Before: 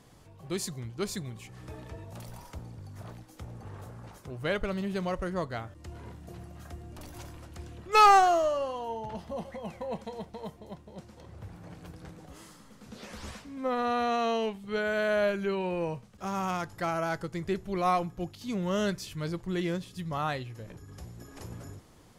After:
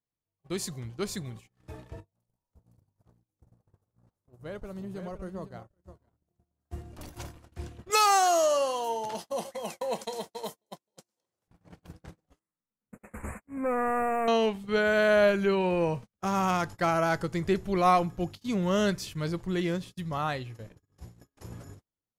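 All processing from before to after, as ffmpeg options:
-filter_complex "[0:a]asettb=1/sr,asplit=3[a][b][c];[a]atrim=end=2.004[d];[b]atrim=start=2:end=6.71,asetpts=PTS-STARTPTS,afade=t=in:d=0.004:c=qsin,afade=t=out:st=4.706:d=0.004:c=qsin,equalizer=f=2.6k:w=0.64:g=-10.5,acompressor=threshold=-48dB:ratio=2:attack=3.2:release=140:knee=1:detection=peak,aecho=1:1:513:0.422,atrim=end_sample=207711[e];[c]atrim=start=6.706[f];[d][e]acrossfade=d=0.004:c1=hsin:c2=qsin[g];[g][f]acrossfade=d=0.004:c1=qsin:c2=hsin,asettb=1/sr,asplit=3[h][i][j];[h]atrim=end=7.904[k];[i]atrim=start=7.9:end=11.48,asetpts=PTS-STARTPTS,afade=t=in:d=0.004:c=qsin,afade=t=out:st=3.576:d=0.004:c=qsin,bass=f=250:g=-10,treble=f=4k:g=14,acompressor=threshold=-25dB:ratio=4:attack=3.2:release=140:knee=1:detection=peak,highpass=150[l];[j]atrim=start=11.476[m];[k][l]acrossfade=d=0.004:c1=hsin:c2=qsin[n];[n][m]acrossfade=d=0.004:c1=qsin:c2=hsin,asettb=1/sr,asplit=3[o][p][q];[o]atrim=end=12.394[r];[p]atrim=start=12.39:end=14.28,asetpts=PTS-STARTPTS,afade=t=in:d=0.004:c=qsin,afade=t=out:st=1.886:d=0.004:c=qsin,agate=range=-9dB:threshold=-48dB:ratio=16:release=100:detection=peak,asoftclip=type=hard:threshold=-30dB,asuperstop=centerf=4300:order=12:qfactor=0.87[s];[q]atrim=start=14.276[t];[r][s]acrossfade=d=0.004:c1=hsin:c2=qsin[u];[u][t]acrossfade=d=0.004:c1=qsin:c2=hsin,agate=range=-39dB:threshold=-43dB:ratio=16:detection=peak,dynaudnorm=f=450:g=17:m=5dB"

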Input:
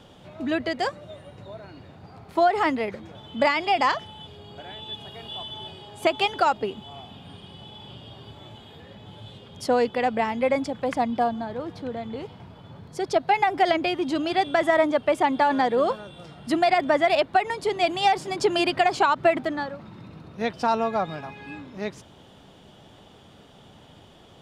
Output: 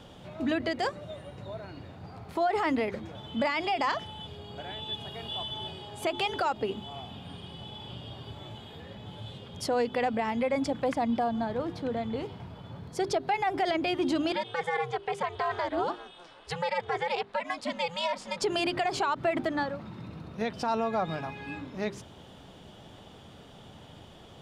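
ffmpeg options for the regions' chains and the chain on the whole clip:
-filter_complex "[0:a]asettb=1/sr,asplit=3[a][b][c];[a]atrim=end=14.324[d];[b]atrim=start=14.32:end=18.42,asetpts=PTS-STARTPTS,afade=t=in:d=0.004:c=qsin,afade=t=out:st=4.096:d=0.004:c=qsin,highpass=570,lowpass=7.9k,aeval=exprs='val(0)*sin(2*PI*170*n/s)':c=same[e];[c]atrim=start=18.416[f];[d][e]acrossfade=d=0.004:c1=hsin:c2=qsin[g];[g][f]acrossfade=d=0.004:c1=qsin:c2=hsin,lowshelf=f=170:g=3.5,bandreject=f=50:t=h:w=6,bandreject=f=100:t=h:w=6,bandreject=f=150:t=h:w=6,bandreject=f=200:t=h:w=6,bandreject=f=250:t=h:w=6,bandreject=f=300:t=h:w=6,bandreject=f=350:t=h:w=6,bandreject=f=400:t=h:w=6,alimiter=limit=-19.5dB:level=0:latency=1:release=98"

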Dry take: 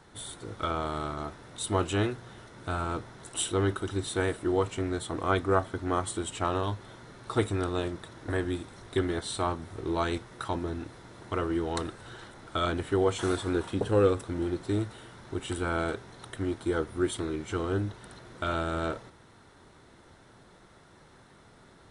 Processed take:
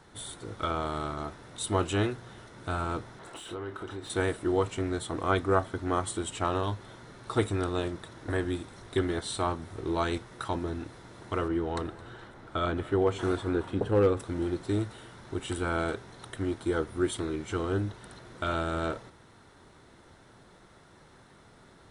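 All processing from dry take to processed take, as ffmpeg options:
-filter_complex "[0:a]asettb=1/sr,asplit=3[a][b][c];[a]atrim=end=3.194[d];[b]atrim=start=3.19:end=4.1,asetpts=PTS-STARTPTS,afade=t=in:d=0.004:c=qsin,afade=t=out:st=0.906:d=0.004:c=qsin,acompressor=threshold=-34dB:ratio=6:attack=3.2:release=140:knee=1:detection=peak,asplit=2[e][f];[f]highpass=f=720:p=1,volume=12dB,asoftclip=type=tanh:threshold=-26.5dB[g];[e][g]amix=inputs=2:normalize=0,lowpass=f=1.3k:p=1,volume=-6dB,asplit=2[h][i];[i]adelay=28,volume=-8.5dB[j];[h][j]amix=inputs=2:normalize=0,atrim=end_sample=40131[k];[c]atrim=start=4.096[l];[d][k]acrossfade=d=0.004:c1=hsin:c2=qsin[m];[m][l]acrossfade=d=0.004:c1=qsin:c2=hsin,asettb=1/sr,asplit=3[n][o][p];[n]atrim=end=11.484[q];[o]atrim=start=11.48:end=14.17,asetpts=PTS-STARTPTS,afade=t=in:d=0.004:c=qsin,afade=t=out:st=2.686:d=0.004:c=qsin,highshelf=f=3.9k:g=-12,aecho=1:1:217:0.106,atrim=end_sample=118629,volume=16dB,asoftclip=hard,volume=-16dB[r];[p]atrim=start=14.166[s];[q][r]acrossfade=d=0.004:c1=hsin:c2=qsin[t];[t][s]acrossfade=d=0.004:c1=qsin:c2=hsin"

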